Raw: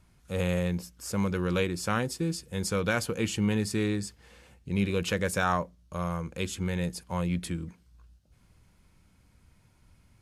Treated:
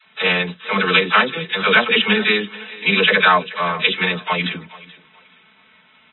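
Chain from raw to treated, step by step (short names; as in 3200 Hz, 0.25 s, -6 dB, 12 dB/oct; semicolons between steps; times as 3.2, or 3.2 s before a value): differentiator; comb 4.6 ms, depth 84%; dispersion lows, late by 95 ms, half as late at 550 Hz; time stretch by phase-locked vocoder 0.6×; BPF 120–3300 Hz; thinning echo 0.431 s, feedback 25%, high-pass 290 Hz, level -19 dB; maximiser +33.5 dB; gain -2 dB; AAC 16 kbps 24000 Hz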